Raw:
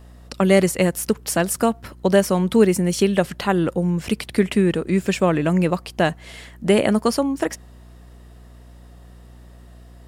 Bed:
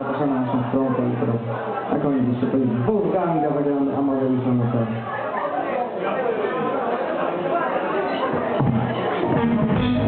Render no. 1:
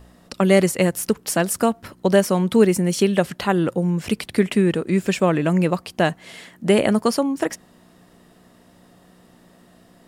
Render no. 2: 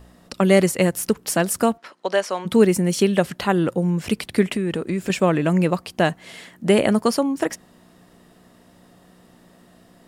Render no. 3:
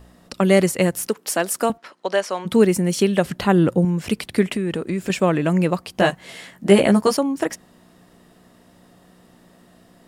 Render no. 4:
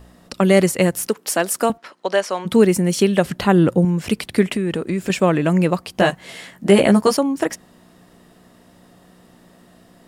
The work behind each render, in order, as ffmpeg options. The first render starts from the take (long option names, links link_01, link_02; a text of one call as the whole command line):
ffmpeg -i in.wav -af "bandreject=frequency=60:width_type=h:width=4,bandreject=frequency=120:width_type=h:width=4" out.wav
ffmpeg -i in.wav -filter_complex "[0:a]asplit=3[link_01][link_02][link_03];[link_01]afade=type=out:start_time=1.77:duration=0.02[link_04];[link_02]highpass=600,lowpass=5800,afade=type=in:start_time=1.77:duration=0.02,afade=type=out:start_time=2.45:duration=0.02[link_05];[link_03]afade=type=in:start_time=2.45:duration=0.02[link_06];[link_04][link_05][link_06]amix=inputs=3:normalize=0,asettb=1/sr,asplit=3[link_07][link_08][link_09];[link_07]atrim=end=4.554[link_10];[link_08]atrim=start=4.55:end=5.1,asetpts=PTS-STARTPTS,afade=type=in:duration=0.004:curve=qsin,afade=type=out:start_time=0.546:duration=0.004:curve=qsin,acompressor=threshold=-19dB:ratio=6:attack=3.2:release=140:knee=1:detection=peak[link_11];[link_09]atrim=start=5.096[link_12];[link_10][link_11]acrossfade=duration=0.004:curve1=hsin:curve2=qsin[link_13];[link_13][link_12]acrossfade=duration=0.004:curve1=qsin:curve2=hsin" out.wav
ffmpeg -i in.wav -filter_complex "[0:a]asettb=1/sr,asplit=3[link_01][link_02][link_03];[link_01]atrim=end=1.074[link_04];[link_02]atrim=start=1.07:end=1.7,asetpts=PTS-STARTPTS,afade=type=in:duration=0.004:curve=qsin,afade=type=out:start_time=0.626:duration=0.004:curve=qsin,highpass=310[link_05];[link_03]atrim=start=1.696[link_06];[link_04][link_05]acrossfade=duration=0.004:curve1=hsin:curve2=qsin[link_07];[link_07][link_06]acrossfade=duration=0.004:curve1=qsin:curve2=hsin,asettb=1/sr,asplit=3[link_08][link_09][link_10];[link_08]atrim=end=3.254[link_11];[link_09]atrim=start=3.25:end=3.85,asetpts=PTS-STARTPTS,afade=type=in:duration=0.004:curve=qsin,afade=type=out:start_time=0.596:duration=0.004:curve=qsin,lowshelf=frequency=340:gain=7[link_12];[link_10]atrim=start=3.846[link_13];[link_11][link_12]acrossfade=duration=0.004:curve1=hsin:curve2=qsin[link_14];[link_14][link_13]acrossfade=duration=0.004:curve1=qsin:curve2=hsin,asettb=1/sr,asplit=3[link_15][link_16][link_17];[link_15]atrim=end=5.934[link_18];[link_16]atrim=start=5.93:end=7.17,asetpts=PTS-STARTPTS,afade=type=in:duration=0.004:curve=qsin,afade=type=out:start_time=1.236:duration=0.004:curve=qsin,asplit=2[link_19][link_20];[link_20]adelay=15,volume=-2.5dB[link_21];[link_19][link_21]amix=inputs=2:normalize=0,atrim=end_sample=54684[link_22];[link_17]atrim=start=7.166[link_23];[link_18][link_22]acrossfade=duration=0.004:curve1=hsin:curve2=qsin[link_24];[link_24][link_23]acrossfade=duration=0.004:curve1=qsin:curve2=hsin" out.wav
ffmpeg -i in.wav -af "volume=2dB,alimiter=limit=-3dB:level=0:latency=1" out.wav